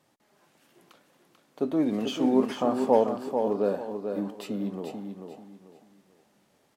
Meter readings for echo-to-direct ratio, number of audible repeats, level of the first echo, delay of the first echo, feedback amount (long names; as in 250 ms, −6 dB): −6.0 dB, 3, −6.5 dB, 440 ms, 29%